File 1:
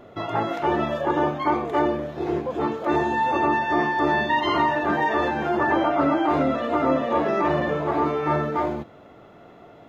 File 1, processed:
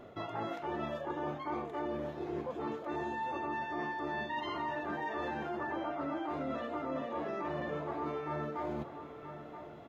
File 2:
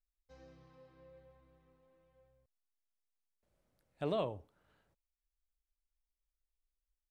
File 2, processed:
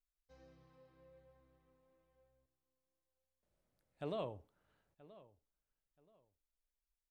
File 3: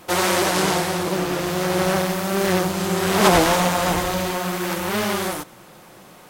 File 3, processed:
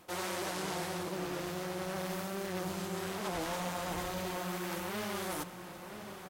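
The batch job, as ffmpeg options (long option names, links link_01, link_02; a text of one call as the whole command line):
ffmpeg -i in.wav -filter_complex "[0:a]asplit=2[link_01][link_02];[link_02]adelay=978,lowpass=frequency=3600:poles=1,volume=-20dB,asplit=2[link_03][link_04];[link_04]adelay=978,lowpass=frequency=3600:poles=1,volume=0.25[link_05];[link_01][link_03][link_05]amix=inputs=3:normalize=0,areverse,acompressor=threshold=-30dB:ratio=6,areverse,volume=-5dB" out.wav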